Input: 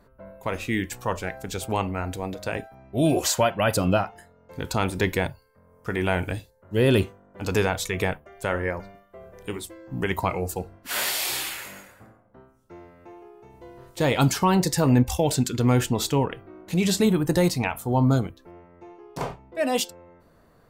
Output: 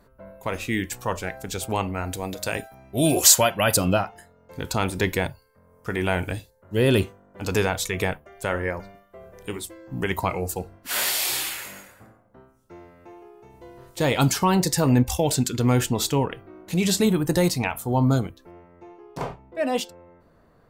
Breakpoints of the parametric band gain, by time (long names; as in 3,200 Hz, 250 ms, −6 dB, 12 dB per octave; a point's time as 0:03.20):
parametric band 13,000 Hz 2.3 octaves
0:01.92 +4 dB
0:02.40 +14.5 dB
0:03.60 +14.5 dB
0:04.02 +3.5 dB
0:18.43 +3.5 dB
0:19.45 −7.5 dB